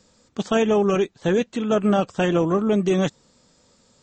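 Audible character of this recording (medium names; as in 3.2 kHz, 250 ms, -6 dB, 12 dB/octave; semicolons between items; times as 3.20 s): noise floor -61 dBFS; spectral tilt -6.0 dB/octave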